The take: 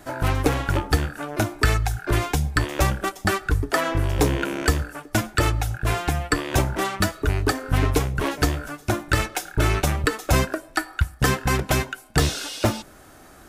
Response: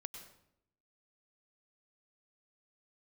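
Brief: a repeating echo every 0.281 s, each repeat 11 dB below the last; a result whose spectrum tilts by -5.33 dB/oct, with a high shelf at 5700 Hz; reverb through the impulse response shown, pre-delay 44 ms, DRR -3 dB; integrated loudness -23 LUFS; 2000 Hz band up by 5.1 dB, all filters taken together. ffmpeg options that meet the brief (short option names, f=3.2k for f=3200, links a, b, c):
-filter_complex "[0:a]equalizer=f=2k:t=o:g=7.5,highshelf=f=5.7k:g=-9,aecho=1:1:281|562|843:0.282|0.0789|0.0221,asplit=2[a][b];[1:a]atrim=start_sample=2205,adelay=44[c];[b][c]afir=irnorm=-1:irlink=0,volume=6.5dB[d];[a][d]amix=inputs=2:normalize=0,volume=-5.5dB"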